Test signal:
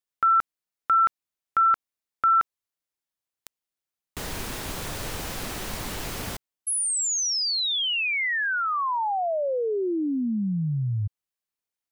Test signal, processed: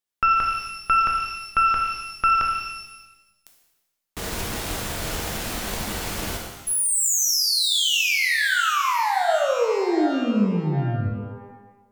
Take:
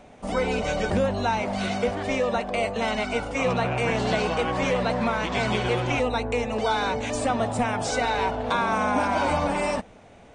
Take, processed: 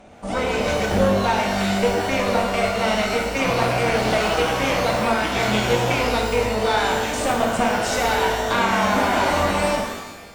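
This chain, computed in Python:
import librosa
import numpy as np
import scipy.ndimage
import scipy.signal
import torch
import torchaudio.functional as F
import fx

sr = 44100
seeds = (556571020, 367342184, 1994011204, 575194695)

y = fx.cheby_harmonics(x, sr, harmonics=(2, 4), levels_db=(-20, -13), full_scale_db=-10.0)
y = fx.rev_shimmer(y, sr, seeds[0], rt60_s=1.0, semitones=12, shimmer_db=-8, drr_db=0.5)
y = y * librosa.db_to_amplitude(1.0)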